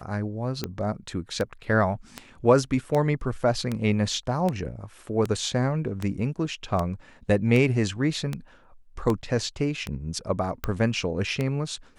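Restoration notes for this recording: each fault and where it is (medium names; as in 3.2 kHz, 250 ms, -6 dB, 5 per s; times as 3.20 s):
tick 78 rpm -14 dBFS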